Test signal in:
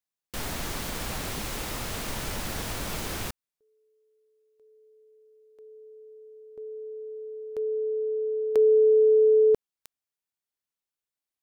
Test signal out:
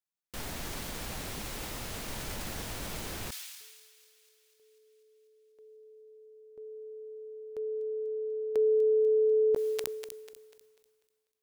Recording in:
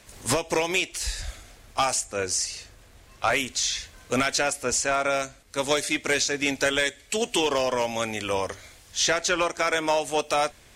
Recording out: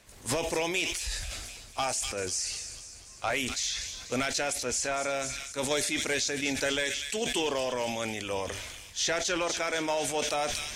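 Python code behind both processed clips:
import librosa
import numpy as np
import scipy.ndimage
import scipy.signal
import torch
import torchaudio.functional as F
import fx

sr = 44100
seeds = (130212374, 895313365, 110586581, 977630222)

p1 = fx.dynamic_eq(x, sr, hz=1200.0, q=2.2, threshold_db=-42.0, ratio=4.0, max_db=-4)
p2 = p1 + fx.echo_wet_highpass(p1, sr, ms=246, feedback_pct=64, hz=2800.0, wet_db=-11, dry=0)
p3 = fx.sustainer(p2, sr, db_per_s=34.0)
y = p3 * librosa.db_to_amplitude(-6.0)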